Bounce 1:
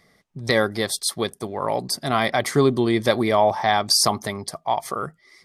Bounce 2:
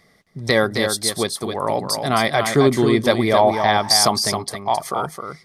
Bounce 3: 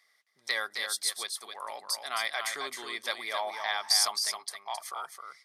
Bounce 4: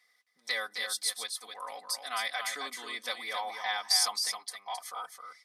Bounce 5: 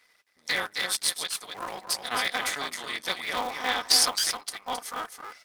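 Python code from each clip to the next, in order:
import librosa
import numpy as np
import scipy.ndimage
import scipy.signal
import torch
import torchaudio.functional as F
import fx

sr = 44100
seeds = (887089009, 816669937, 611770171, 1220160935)

y1 = x + 10.0 ** (-6.5 / 20.0) * np.pad(x, (int(266 * sr / 1000.0), 0))[:len(x)]
y1 = y1 * librosa.db_to_amplitude(2.5)
y2 = scipy.signal.sosfilt(scipy.signal.butter(2, 1300.0, 'highpass', fs=sr, output='sos'), y1)
y2 = y2 * librosa.db_to_amplitude(-8.5)
y3 = y2 + 0.92 * np.pad(y2, (int(4.0 * sr / 1000.0), 0))[:len(y2)]
y3 = y3 * librosa.db_to_amplitude(-4.0)
y4 = fx.cycle_switch(y3, sr, every=3, mode='muted')
y4 = y4 * librosa.db_to_amplitude(7.0)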